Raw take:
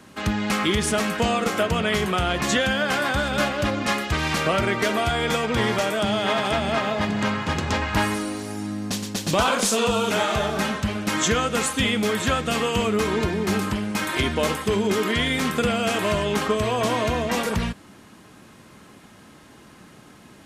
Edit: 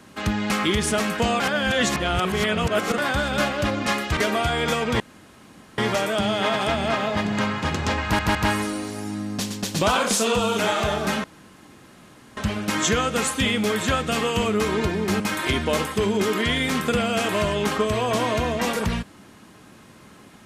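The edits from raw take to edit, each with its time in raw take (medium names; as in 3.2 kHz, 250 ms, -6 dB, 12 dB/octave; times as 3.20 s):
1.40–2.98 s: reverse
4.17–4.79 s: delete
5.62 s: insert room tone 0.78 s
7.87 s: stutter 0.16 s, 3 plays
10.76 s: insert room tone 1.13 s
13.59–13.90 s: delete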